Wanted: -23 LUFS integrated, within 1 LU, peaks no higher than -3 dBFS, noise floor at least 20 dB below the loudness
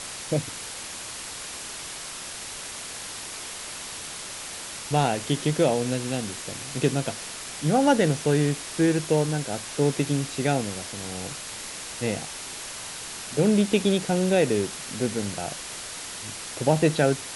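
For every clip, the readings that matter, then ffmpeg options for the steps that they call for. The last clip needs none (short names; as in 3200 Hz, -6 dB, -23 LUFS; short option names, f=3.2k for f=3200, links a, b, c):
noise floor -37 dBFS; noise floor target -47 dBFS; loudness -26.5 LUFS; peak -8.5 dBFS; loudness target -23.0 LUFS
-> -af "afftdn=nr=10:nf=-37"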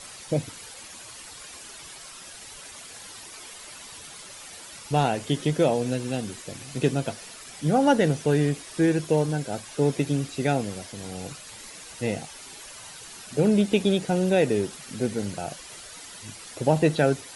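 noise floor -44 dBFS; noise floor target -46 dBFS
-> -af "afftdn=nr=6:nf=-44"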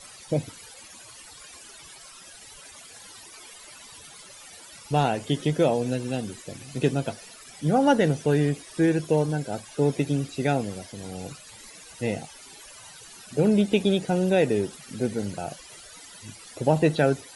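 noise floor -47 dBFS; loudness -25.5 LUFS; peak -8.5 dBFS; loudness target -23.0 LUFS
-> -af "volume=2.5dB"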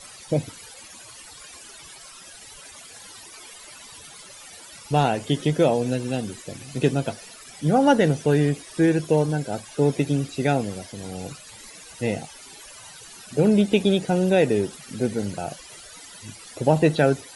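loudness -23.0 LUFS; peak -6.0 dBFS; noise floor -44 dBFS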